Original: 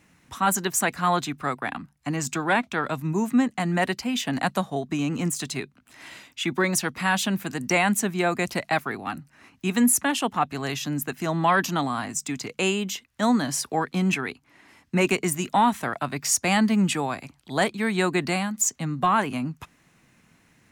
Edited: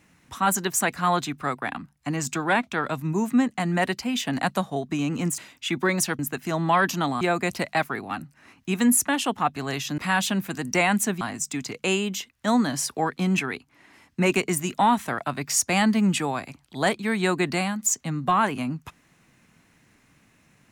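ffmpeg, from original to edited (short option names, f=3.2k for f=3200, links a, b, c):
-filter_complex "[0:a]asplit=6[a][b][c][d][e][f];[a]atrim=end=5.382[g];[b]atrim=start=6.128:end=6.942[h];[c]atrim=start=10.938:end=11.962[i];[d]atrim=start=8.168:end=10.942[j];[e]atrim=start=6.938:end=8.172[k];[f]atrim=start=11.958[l];[g][h]acrossfade=d=0.004:c1=hsin:c2=hsin[m];[m][i]acrossfade=d=0.004:c1=hsin:c2=hsin[n];[n][j]acrossfade=d=0.004:c1=hsin:c2=hsin[o];[o][k]acrossfade=d=0.004:c1=hsin:c2=hsin[p];[p][l]acrossfade=d=0.004:c1=hsin:c2=hsin"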